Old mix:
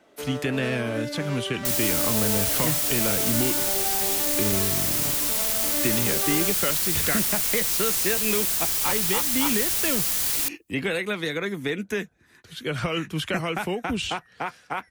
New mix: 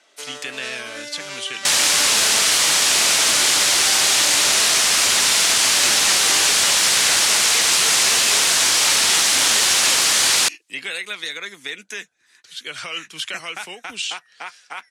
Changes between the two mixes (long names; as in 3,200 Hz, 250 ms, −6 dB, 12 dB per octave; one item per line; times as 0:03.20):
speech −4.5 dB
second sound: remove first-order pre-emphasis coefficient 0.9
master: add meter weighting curve ITU-R 468